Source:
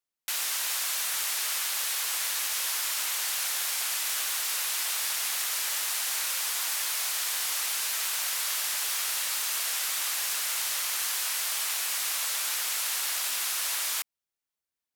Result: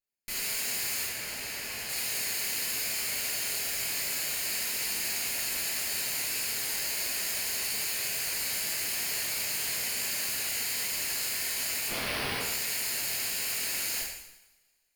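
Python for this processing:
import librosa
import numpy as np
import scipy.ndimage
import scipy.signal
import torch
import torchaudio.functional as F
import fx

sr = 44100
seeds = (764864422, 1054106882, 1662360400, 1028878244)

y = fx.lower_of_two(x, sr, delay_ms=0.42)
y = fx.high_shelf(y, sr, hz=3700.0, db=-8.0, at=(1.04, 1.89))
y = fx.sample_hold(y, sr, seeds[0], rate_hz=7200.0, jitter_pct=0, at=(11.88, 12.39), fade=0.02)
y = fx.rev_double_slope(y, sr, seeds[1], early_s=0.85, late_s=2.5, knee_db=-27, drr_db=-5.5)
y = y * 10.0 ** (-6.5 / 20.0)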